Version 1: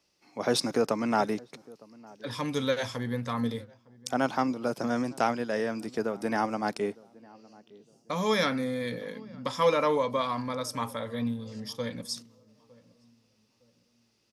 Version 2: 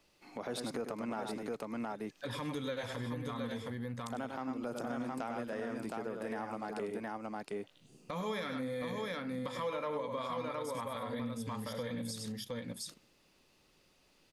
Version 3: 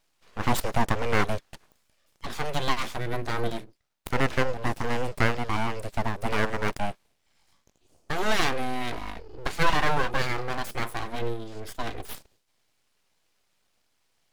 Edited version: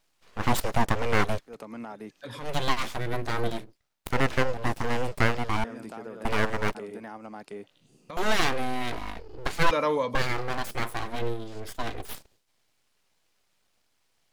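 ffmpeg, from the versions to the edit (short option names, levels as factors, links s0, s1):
-filter_complex "[1:a]asplit=3[s0][s1][s2];[2:a]asplit=5[s3][s4][s5][s6][s7];[s3]atrim=end=1.56[s8];[s0]atrim=start=1.46:end=2.5[s9];[s4]atrim=start=2.4:end=5.642[s10];[s1]atrim=start=5.638:end=6.252[s11];[s5]atrim=start=6.248:end=6.752[s12];[s2]atrim=start=6.748:end=8.172[s13];[s6]atrim=start=8.168:end=9.712[s14];[0:a]atrim=start=9.708:end=10.152[s15];[s7]atrim=start=10.148[s16];[s8][s9]acrossfade=d=0.1:c1=tri:c2=tri[s17];[s17][s10]acrossfade=d=0.1:c1=tri:c2=tri[s18];[s18][s11]acrossfade=d=0.004:c1=hsin:c2=hsin[s19];[s19][s12]acrossfade=d=0.004:c1=hsin:c2=hsin[s20];[s20][s13]acrossfade=d=0.004:c1=hsin:c2=hsin[s21];[s21][s14]acrossfade=d=0.004:c1=hsin:c2=hsin[s22];[s22][s15]acrossfade=d=0.004:c1=hsin:c2=hsin[s23];[s23][s16]acrossfade=d=0.004:c1=hsin:c2=hsin"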